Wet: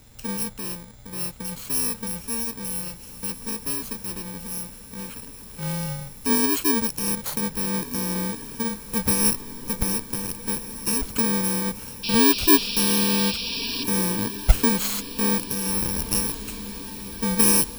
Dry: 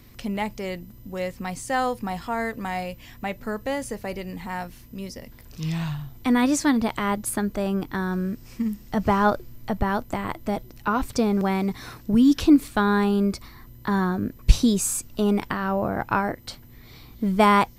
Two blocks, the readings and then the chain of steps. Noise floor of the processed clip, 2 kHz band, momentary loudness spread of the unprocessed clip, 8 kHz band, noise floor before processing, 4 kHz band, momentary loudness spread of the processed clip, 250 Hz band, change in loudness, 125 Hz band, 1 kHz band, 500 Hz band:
−42 dBFS, −2.0 dB, 14 LU, +9.5 dB, −47 dBFS, +8.5 dB, 14 LU, −3.5 dB, +1.5 dB, −2.0 dB, −7.5 dB, −4.0 dB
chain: samples in bit-reversed order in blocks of 64 samples
sound drawn into the spectrogram noise, 0:12.03–0:13.84, 2,300–5,700 Hz −29 dBFS
feedback delay with all-pass diffusion 1,620 ms, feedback 62%, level −14 dB
level −1 dB

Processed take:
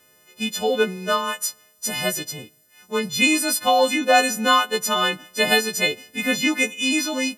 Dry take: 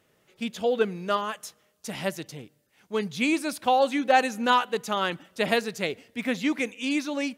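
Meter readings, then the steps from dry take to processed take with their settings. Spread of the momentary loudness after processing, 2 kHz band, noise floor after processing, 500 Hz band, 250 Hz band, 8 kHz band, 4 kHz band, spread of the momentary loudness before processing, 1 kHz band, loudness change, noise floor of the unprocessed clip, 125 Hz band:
11 LU, +8.0 dB, −57 dBFS, +4.0 dB, +3.0 dB, +15.5 dB, +11.0 dB, 14 LU, +4.0 dB, +6.0 dB, −67 dBFS, +2.5 dB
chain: every partial snapped to a pitch grid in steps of 3 semitones
level +4 dB

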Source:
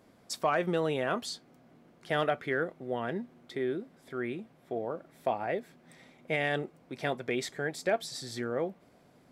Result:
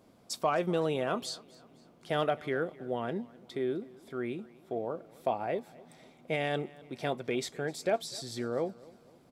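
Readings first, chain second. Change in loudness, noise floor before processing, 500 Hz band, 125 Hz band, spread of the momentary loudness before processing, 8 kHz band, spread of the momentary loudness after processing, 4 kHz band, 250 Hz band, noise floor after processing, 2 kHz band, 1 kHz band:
−0.5 dB, −62 dBFS, 0.0 dB, 0.0 dB, 10 LU, 0.0 dB, 11 LU, −0.5 dB, 0.0 dB, −61 dBFS, −4.5 dB, −0.5 dB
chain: parametric band 1,800 Hz −7 dB 0.58 octaves
on a send: repeating echo 256 ms, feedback 43%, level −22 dB

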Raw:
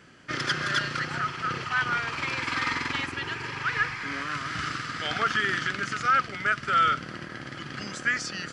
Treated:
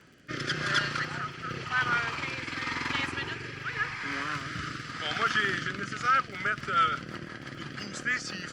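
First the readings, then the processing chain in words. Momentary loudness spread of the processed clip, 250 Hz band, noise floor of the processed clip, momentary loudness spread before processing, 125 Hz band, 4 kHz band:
11 LU, −1.5 dB, −44 dBFS, 9 LU, −1.5 dB, −2.0 dB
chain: surface crackle 33 per second −39 dBFS
rotating-speaker cabinet horn 0.9 Hz, later 6 Hz, at 0:05.80
Opus 64 kbit/s 48,000 Hz

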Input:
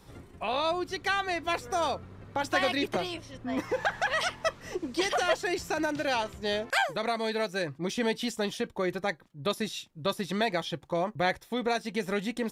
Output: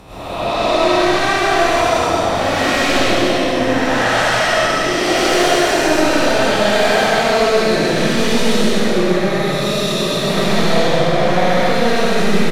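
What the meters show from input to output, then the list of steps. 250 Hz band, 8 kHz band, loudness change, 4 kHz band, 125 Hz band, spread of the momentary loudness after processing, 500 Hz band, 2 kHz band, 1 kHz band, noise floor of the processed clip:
+16.0 dB, +17.5 dB, +15.5 dB, +16.0 dB, +18.5 dB, 3 LU, +16.0 dB, +14.5 dB, +14.5 dB, −19 dBFS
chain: spectrum smeared in time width 509 ms
sine wavefolder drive 10 dB, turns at −22 dBFS
loudspeakers that aren't time-aligned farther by 44 metres −1 dB, 69 metres −3 dB
comb and all-pass reverb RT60 1.1 s, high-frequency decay 0.9×, pre-delay 60 ms, DRR −9.5 dB
level −2.5 dB

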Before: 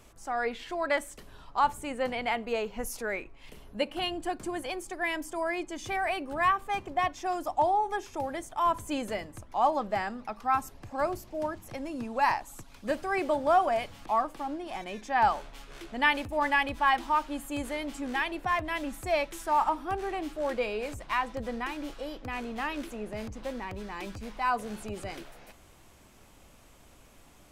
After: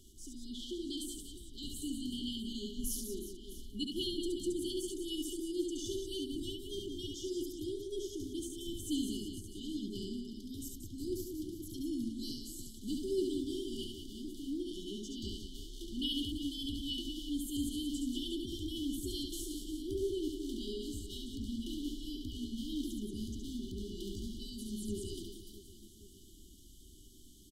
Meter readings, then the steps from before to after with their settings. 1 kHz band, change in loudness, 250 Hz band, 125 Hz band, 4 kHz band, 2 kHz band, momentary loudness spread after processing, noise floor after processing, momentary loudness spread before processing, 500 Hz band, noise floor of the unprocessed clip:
below −40 dB, −9.0 dB, 0.0 dB, −1.5 dB, 0.0 dB, below −40 dB, 11 LU, −55 dBFS, 12 LU, −9.5 dB, −56 dBFS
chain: parametric band 140 Hz −8 dB 0.7 octaves
reverse bouncing-ball delay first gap 70 ms, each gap 1.6×, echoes 5
brick-wall band-stop 410–2,900 Hz
level −1 dB

